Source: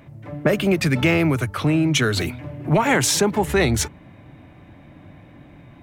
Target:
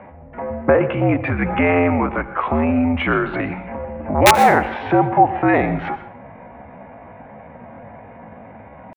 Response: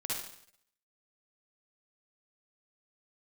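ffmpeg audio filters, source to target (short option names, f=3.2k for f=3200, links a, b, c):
-filter_complex "[0:a]equalizer=f=850:t=o:w=1.2:g=14,highpass=f=160:t=q:w=0.5412,highpass=f=160:t=q:w=1.307,lowpass=f=2.6k:t=q:w=0.5176,lowpass=f=2.6k:t=q:w=0.7071,lowpass=f=2.6k:t=q:w=1.932,afreqshift=-65,asplit=2[a][b];[b]acompressor=threshold=-26dB:ratio=10,volume=2dB[c];[a][c]amix=inputs=2:normalize=0,aeval=exprs='(mod(0.794*val(0)+1,2)-1)/0.794':c=same,atempo=0.65,asplit=2[d][e];[1:a]atrim=start_sample=2205,asetrate=66150,aresample=44100,adelay=82[f];[e][f]afir=irnorm=-1:irlink=0,volume=-12dB[g];[d][g]amix=inputs=2:normalize=0,volume=-3.5dB"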